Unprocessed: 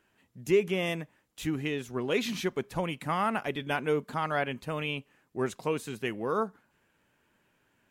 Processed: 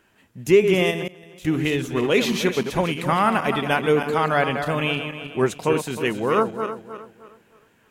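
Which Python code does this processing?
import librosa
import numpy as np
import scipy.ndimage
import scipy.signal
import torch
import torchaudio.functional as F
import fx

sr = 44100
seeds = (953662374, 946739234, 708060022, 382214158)

y = fx.reverse_delay_fb(x, sr, ms=155, feedback_pct=57, wet_db=-7.5)
y = fx.level_steps(y, sr, step_db=18, at=(0.9, 1.46), fade=0.02)
y = y * 10.0 ** (9.0 / 20.0)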